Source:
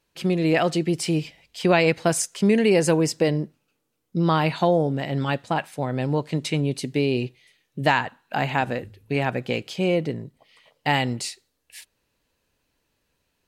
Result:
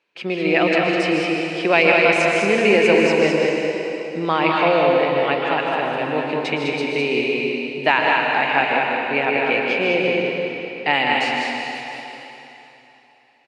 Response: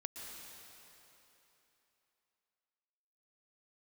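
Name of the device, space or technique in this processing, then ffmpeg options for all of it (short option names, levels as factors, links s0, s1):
station announcement: -filter_complex "[0:a]highpass=330,lowpass=3600,equalizer=f=2400:t=o:w=0.43:g=8,aecho=1:1:154.5|204.1:0.355|0.631[s0];[1:a]atrim=start_sample=2205[s1];[s0][s1]afir=irnorm=-1:irlink=0,volume=2.11"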